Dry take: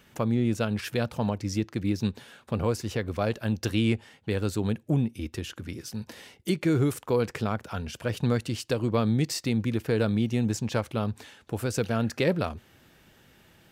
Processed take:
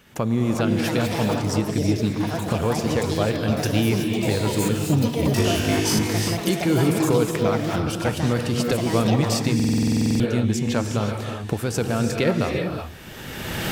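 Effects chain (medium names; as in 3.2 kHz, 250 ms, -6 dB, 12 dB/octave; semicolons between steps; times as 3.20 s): recorder AGC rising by 24 dB/s; 5.28–5.99 s: flutter echo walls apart 3.3 m, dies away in 1 s; gated-style reverb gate 400 ms rising, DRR 3 dB; ever faster or slower copies 450 ms, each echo +6 st, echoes 2, each echo -6 dB; buffer glitch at 9.55 s, samples 2048, times 13; trim +3 dB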